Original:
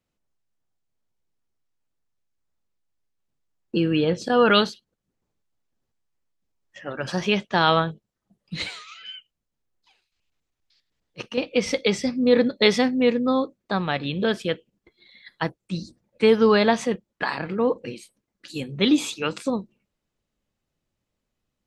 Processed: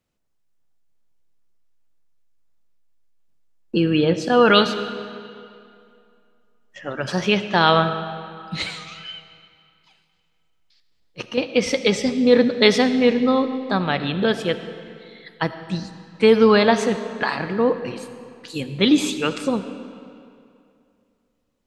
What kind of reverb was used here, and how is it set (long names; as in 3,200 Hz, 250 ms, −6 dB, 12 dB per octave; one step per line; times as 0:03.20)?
comb and all-pass reverb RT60 2.5 s, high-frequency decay 0.8×, pre-delay 30 ms, DRR 10.5 dB
level +3 dB